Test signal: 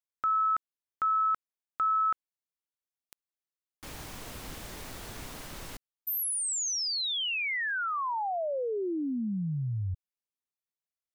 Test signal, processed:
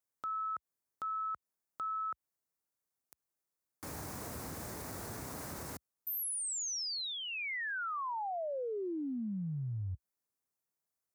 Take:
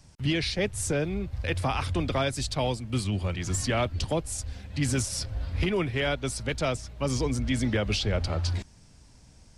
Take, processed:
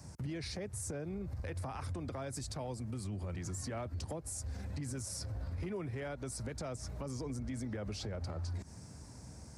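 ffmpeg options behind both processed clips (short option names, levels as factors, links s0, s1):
-af "highpass=f=64:w=0.5412,highpass=f=64:w=1.3066,equalizer=f=3100:t=o:w=1:g=-14.5,acompressor=threshold=0.00794:ratio=8:attack=0.34:release=89:knee=6:detection=rms,volume=2"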